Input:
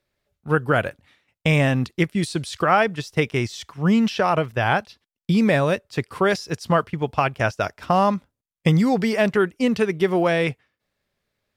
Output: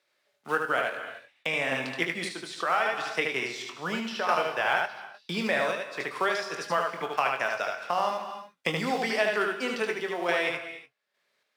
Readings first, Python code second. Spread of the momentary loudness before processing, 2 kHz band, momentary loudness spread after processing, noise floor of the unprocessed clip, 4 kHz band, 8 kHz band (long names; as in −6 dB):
8 LU, −2.5 dB, 9 LU, −85 dBFS, −2.5 dB, −4.5 dB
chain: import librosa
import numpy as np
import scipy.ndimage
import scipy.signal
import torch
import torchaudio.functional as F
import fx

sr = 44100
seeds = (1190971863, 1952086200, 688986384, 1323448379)

p1 = fx.block_float(x, sr, bits=7)
p2 = np.sign(p1) * np.maximum(np.abs(p1) - 10.0 ** (-36.5 / 20.0), 0.0)
p3 = p1 + F.gain(torch.from_numpy(p2), -6.0).numpy()
p4 = scipy.signal.sosfilt(scipy.signal.butter(2, 98.0, 'highpass', fs=sr, output='sos'), p3)
p5 = fx.low_shelf(p4, sr, hz=260.0, db=-7.5)
p6 = fx.doubler(p5, sr, ms=23.0, db=-9)
p7 = p6 + fx.echo_single(p6, sr, ms=75, db=-3.5, dry=0)
p8 = fx.rev_gated(p7, sr, seeds[0], gate_ms=320, shape='flat', drr_db=10.0)
p9 = fx.tremolo_random(p8, sr, seeds[1], hz=3.5, depth_pct=55)
p10 = fx.weighting(p9, sr, curve='A')
p11 = fx.band_squash(p10, sr, depth_pct=40)
y = F.gain(torch.from_numpy(p11), -7.0).numpy()